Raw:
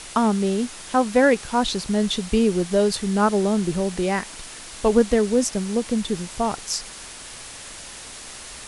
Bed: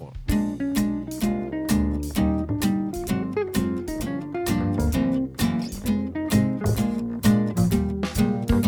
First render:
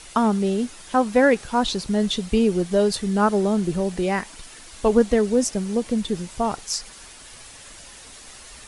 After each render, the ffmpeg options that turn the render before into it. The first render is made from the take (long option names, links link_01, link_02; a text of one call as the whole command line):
ffmpeg -i in.wav -af "afftdn=noise_reduction=7:noise_floor=-39" out.wav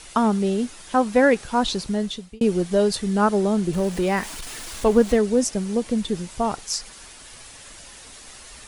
ffmpeg -i in.wav -filter_complex "[0:a]asettb=1/sr,asplit=3[link_01][link_02][link_03];[link_01]atrim=end=3.734[link_04];[link_02]atrim=start=3.73:end=5.17,asetpts=PTS-STARTPTS,afade=type=in:duration=0.004:curve=qsin,afade=type=out:start_time=1.436:duration=0.004:curve=qsin,aeval=exprs='val(0)+0.5*0.0224*sgn(val(0))':channel_layout=same[link_05];[link_03]atrim=start=5.166[link_06];[link_04][link_05]acrossfade=duration=0.004:curve1=hsin:curve2=qsin[link_07];[link_07][link_06]acrossfade=duration=0.004:curve1=qsin:curve2=hsin,asplit=2[link_08][link_09];[link_08]atrim=end=2.41,asetpts=PTS-STARTPTS,afade=type=out:start_time=1.81:duration=0.6[link_10];[link_09]atrim=start=2.41,asetpts=PTS-STARTPTS,afade=type=in:duration=0.004:curve=hsin[link_11];[link_10][link_11]concat=n=2:v=0:a=1" out.wav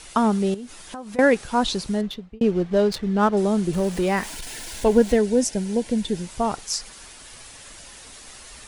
ffmpeg -i in.wav -filter_complex "[0:a]asettb=1/sr,asplit=3[link_01][link_02][link_03];[link_01]atrim=end=0.544[link_04];[link_02]atrim=start=0.54:end=1.19,asetpts=PTS-STARTPTS,afade=type=in:duration=0.004:curve=qsin,afade=type=out:start_time=0.646:duration=0.004:curve=qsin,acompressor=threshold=-32dB:ratio=8:attack=3.2:release=140:knee=1:detection=peak[link_05];[link_03]atrim=start=1.186[link_06];[link_04][link_05]acrossfade=duration=0.004:curve1=hsin:curve2=qsin[link_07];[link_07][link_06]acrossfade=duration=0.004:curve1=qsin:curve2=hsin,asettb=1/sr,asplit=3[link_08][link_09][link_10];[link_08]atrim=end=2.014[link_11];[link_09]atrim=start=2.01:end=3.37,asetpts=PTS-STARTPTS,afade=type=in:duration=0.004:curve=qsin,afade=type=out:start_time=1.356:duration=0.004:curve=qsin,adynamicsmooth=sensitivity=3:basefreq=2000[link_12];[link_10]atrim=start=3.366[link_13];[link_11][link_12]acrossfade=duration=0.004:curve1=hsin:curve2=qsin[link_14];[link_14][link_13]acrossfade=duration=0.004:curve1=qsin:curve2=hsin,asettb=1/sr,asplit=3[link_15][link_16][link_17];[link_15]atrim=end=4.304[link_18];[link_16]atrim=start=4.3:end=6.22,asetpts=PTS-STARTPTS,afade=type=in:duration=0.004:curve=qsin,afade=type=out:start_time=1.916:duration=0.004:curve=qsin,asuperstop=centerf=1200:order=4:qfactor=4.4[link_19];[link_17]atrim=start=6.216[link_20];[link_18][link_19]acrossfade=duration=0.004:curve1=hsin:curve2=qsin[link_21];[link_21][link_20]acrossfade=duration=0.004:curve1=qsin:curve2=hsin" out.wav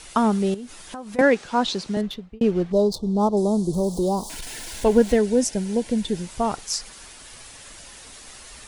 ffmpeg -i in.wav -filter_complex "[0:a]asettb=1/sr,asplit=3[link_01][link_02][link_03];[link_01]atrim=end=1.214[link_04];[link_02]atrim=start=1.21:end=1.97,asetpts=PTS-STARTPTS,afade=type=in:duration=0.004:curve=qsin,afade=type=out:start_time=0.756:duration=0.004:curve=qsin,acrossover=split=150 7900:gain=0.2 1 0.126[link_05][link_06][link_07];[link_05][link_06][link_07]amix=inputs=3:normalize=0[link_08];[link_03]atrim=start=1.966[link_09];[link_04][link_08]acrossfade=duration=0.004:curve1=hsin:curve2=qsin[link_10];[link_10][link_09]acrossfade=duration=0.004:curve1=qsin:curve2=hsin,asettb=1/sr,asplit=3[link_11][link_12][link_13];[link_11]atrim=end=2.724[link_14];[link_12]atrim=start=2.72:end=4.3,asetpts=PTS-STARTPTS,afade=type=in:duration=0.004:curve=qsin,afade=type=out:start_time=1.576:duration=0.004:curve=qsin,asuperstop=centerf=2000:order=8:qfactor=0.7[link_15];[link_13]atrim=start=4.296[link_16];[link_14][link_15]acrossfade=duration=0.004:curve1=hsin:curve2=qsin[link_17];[link_17][link_16]acrossfade=duration=0.004:curve1=qsin:curve2=hsin" out.wav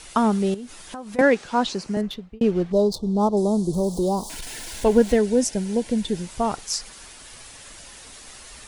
ffmpeg -i in.wav -filter_complex "[0:a]asettb=1/sr,asplit=3[link_01][link_02][link_03];[link_01]atrim=end=1.684[link_04];[link_02]atrim=start=1.68:end=2.09,asetpts=PTS-STARTPTS,afade=type=in:duration=0.004:curve=qsin,afade=type=out:start_time=0.406:duration=0.004:curve=qsin,equalizer=frequency=3600:width_type=o:width=0.39:gain=-12.5[link_05];[link_03]atrim=start=2.086[link_06];[link_04][link_05]acrossfade=duration=0.004:curve1=hsin:curve2=qsin[link_07];[link_07][link_06]acrossfade=duration=0.004:curve1=qsin:curve2=hsin" out.wav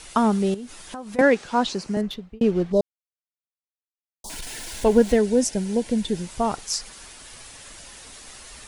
ffmpeg -i in.wav -filter_complex "[0:a]asplit=3[link_01][link_02][link_03];[link_01]atrim=end=2.81,asetpts=PTS-STARTPTS,afade=type=out:start_time=2.806:duration=0.004:curve=hsin[link_04];[link_02]atrim=start=2.81:end=4.24,asetpts=PTS-STARTPTS,volume=0[link_05];[link_03]atrim=start=4.24,asetpts=PTS-STARTPTS,afade=type=in:duration=0.004:curve=hsin[link_06];[link_04][link_05][link_06]concat=n=3:v=0:a=1" out.wav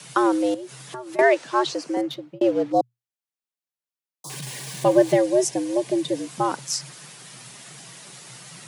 ffmpeg -i in.wav -af "afreqshift=120" out.wav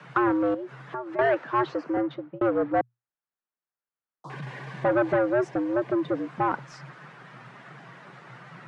ffmpeg -i in.wav -af "asoftclip=type=tanh:threshold=-19.5dB,lowpass=frequency=1500:width_type=q:width=1.7" out.wav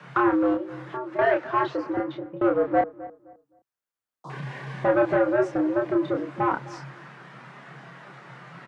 ffmpeg -i in.wav -filter_complex "[0:a]asplit=2[link_01][link_02];[link_02]adelay=29,volume=-3.5dB[link_03];[link_01][link_03]amix=inputs=2:normalize=0,asplit=2[link_04][link_05];[link_05]adelay=260,lowpass=frequency=1300:poles=1,volume=-16.5dB,asplit=2[link_06][link_07];[link_07]adelay=260,lowpass=frequency=1300:poles=1,volume=0.29,asplit=2[link_08][link_09];[link_09]adelay=260,lowpass=frequency=1300:poles=1,volume=0.29[link_10];[link_04][link_06][link_08][link_10]amix=inputs=4:normalize=0" out.wav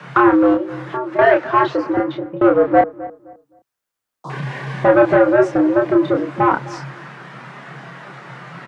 ffmpeg -i in.wav -af "volume=9dB" out.wav